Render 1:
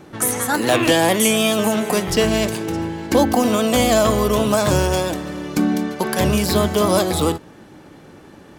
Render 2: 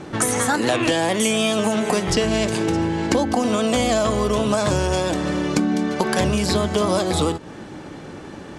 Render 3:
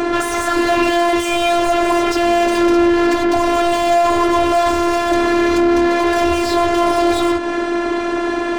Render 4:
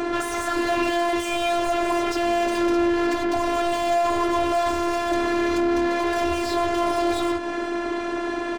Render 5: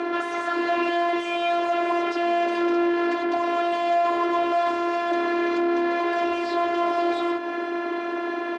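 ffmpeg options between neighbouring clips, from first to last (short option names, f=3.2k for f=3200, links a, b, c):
-af "lowpass=f=9.3k:w=0.5412,lowpass=f=9.3k:w=1.3066,acompressor=threshold=-24dB:ratio=6,volume=7dB"
-filter_complex "[0:a]asplit=2[a][b];[b]highpass=f=720:p=1,volume=37dB,asoftclip=type=tanh:threshold=-3dB[c];[a][c]amix=inputs=2:normalize=0,lowpass=f=1.2k:p=1,volume=-6dB,afftfilt=real='hypot(re,im)*cos(PI*b)':imag='0':win_size=512:overlap=0.75,equalizer=f=74:t=o:w=0.43:g=8.5"
-af "aecho=1:1:483:0.0841,volume=-7.5dB"
-af "highpass=270,lowpass=3.3k"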